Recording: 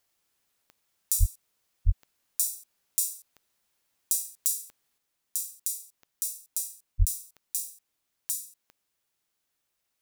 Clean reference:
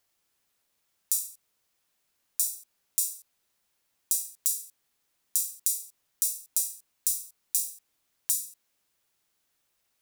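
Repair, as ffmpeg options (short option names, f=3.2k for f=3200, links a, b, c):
-filter_complex "[0:a]adeclick=t=4,asplit=3[a][b][c];[a]afade=t=out:st=1.19:d=0.02[d];[b]highpass=f=140:w=0.5412,highpass=f=140:w=1.3066,afade=t=in:st=1.19:d=0.02,afade=t=out:st=1.31:d=0.02[e];[c]afade=t=in:st=1.31:d=0.02[f];[d][e][f]amix=inputs=3:normalize=0,asplit=3[g][h][i];[g]afade=t=out:st=1.85:d=0.02[j];[h]highpass=f=140:w=0.5412,highpass=f=140:w=1.3066,afade=t=in:st=1.85:d=0.02,afade=t=out:st=1.97:d=0.02[k];[i]afade=t=in:st=1.97:d=0.02[l];[j][k][l]amix=inputs=3:normalize=0,asplit=3[m][n][o];[m]afade=t=out:st=6.98:d=0.02[p];[n]highpass=f=140:w=0.5412,highpass=f=140:w=1.3066,afade=t=in:st=6.98:d=0.02,afade=t=out:st=7.1:d=0.02[q];[o]afade=t=in:st=7.1:d=0.02[r];[p][q][r]amix=inputs=3:normalize=0,asetnsamples=n=441:p=0,asendcmd='4.98 volume volume 4.5dB',volume=0dB"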